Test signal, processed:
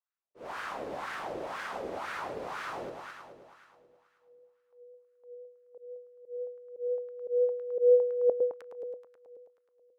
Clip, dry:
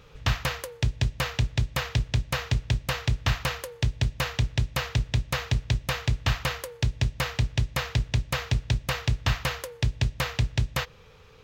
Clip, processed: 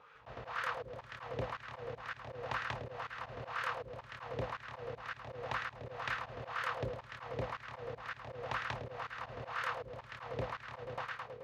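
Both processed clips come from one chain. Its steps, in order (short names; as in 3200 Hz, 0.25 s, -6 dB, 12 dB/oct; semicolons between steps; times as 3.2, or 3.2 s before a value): multi-head echo 0.107 s, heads first and second, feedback 62%, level -9 dB; wah 2 Hz 460–1500 Hz, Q 2.7; auto swell 0.165 s; gain +4 dB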